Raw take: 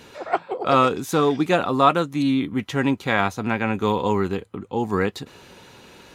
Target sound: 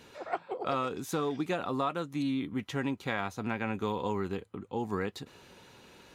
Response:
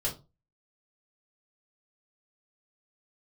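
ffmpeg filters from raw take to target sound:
-af "acompressor=threshold=0.112:ratio=6,volume=0.376"

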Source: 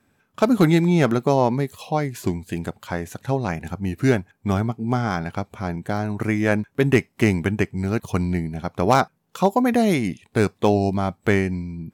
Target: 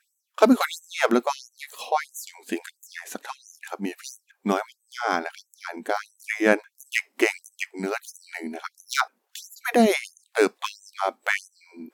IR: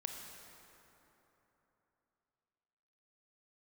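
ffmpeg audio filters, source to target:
-af "afftfilt=real='re*gte(b*sr/1024,200*pow(6000/200,0.5+0.5*sin(2*PI*1.5*pts/sr)))':imag='im*gte(b*sr/1024,200*pow(6000/200,0.5+0.5*sin(2*PI*1.5*pts/sr)))':win_size=1024:overlap=0.75,volume=1.33"

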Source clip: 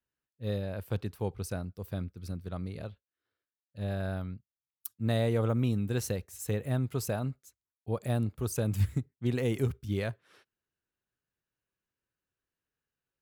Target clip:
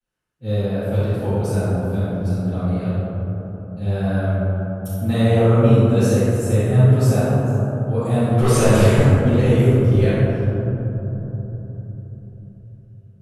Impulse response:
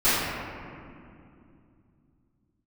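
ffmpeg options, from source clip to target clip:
-filter_complex "[0:a]asettb=1/sr,asplit=3[s0][s1][s2];[s0]atrim=end=8.314[s3];[s1]atrim=start=8.31:end=9.1,asetpts=PTS-STARTPTS,afade=t=in:d=0.004:c=qsin,afade=t=out:st=0.786:d=0.004:c=qsin,asplit=2[s4][s5];[s5]highpass=f=720:p=1,volume=22.4,asoftclip=type=tanh:threshold=0.133[s6];[s4][s6]amix=inputs=2:normalize=0,lowpass=f=3500:p=1,volume=0.501[s7];[s2]atrim=start=9.096[s8];[s3][s7]acrossfade=d=0.004:c1=hsin:c2=qsin[s9];[s9][s8]acrossfade=d=0.004:c1=qsin:c2=hsin[s10];[1:a]atrim=start_sample=2205,asetrate=25578,aresample=44100[s11];[s10][s11]afir=irnorm=-1:irlink=0,volume=0.335"

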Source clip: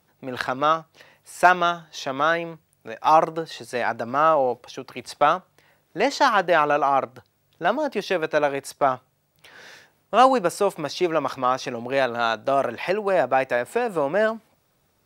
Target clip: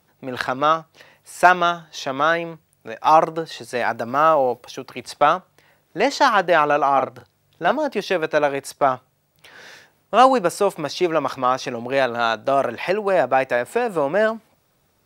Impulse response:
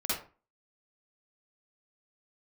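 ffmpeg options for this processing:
-filter_complex "[0:a]asettb=1/sr,asplit=3[s0][s1][s2];[s0]atrim=end=3.804[s3];[s1]atrim=start=3.8:end=4.87,asetpts=PTS-STARTPTS,afade=t=in:d=0.004:c=qsin,afade=t=out:st=1.066:d=0.004:c=qsin,highshelf=f=12000:g=12[s4];[s2]atrim=start=4.866[s5];[s3][s4]acrossfade=d=0.004:c1=hsin:c2=qsin[s6];[s6][s5]acrossfade=d=0.004:c1=qsin:c2=hsin,asettb=1/sr,asplit=3[s7][s8][s9];[s7]atrim=end=6.924[s10];[s8]atrim=start=6.92:end=7.72,asetpts=PTS-STARTPTS,afade=t=in:d=0.004:c=qsin,afade=t=out:st=0.796:d=0.004:c=qsin,asplit=2[s11][s12];[s12]adelay=41,volume=0.398[s13];[s11][s13]amix=inputs=2:normalize=0,atrim=end_sample=35280[s14];[s9]atrim=start=7.716[s15];[s10][s14]acrossfade=d=0.004:c1=hsin:c2=qsin[s16];[s16][s15]acrossfade=d=0.004:c1=qsin:c2=hsin,volume=1.33"

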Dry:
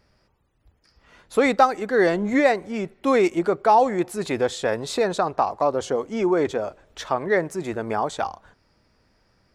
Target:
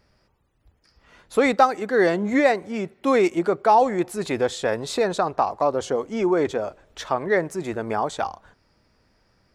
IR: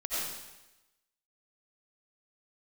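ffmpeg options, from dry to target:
-filter_complex "[0:a]asettb=1/sr,asplit=3[s0][s1][s2];[s0]atrim=end=1.524[s3];[s1]atrim=start=1.52:end=3.82,asetpts=PTS-STARTPTS,afade=t=in:d=0.004:c=qsin,afade=t=out:st=2.296:d=0.004:c=qsin,highpass=76[s4];[s2]atrim=start=3.816[s5];[s3][s4]acrossfade=d=0.004:c1=hsin:c2=qsin[s6];[s6][s5]acrossfade=d=0.004:c1=qsin:c2=hsin"

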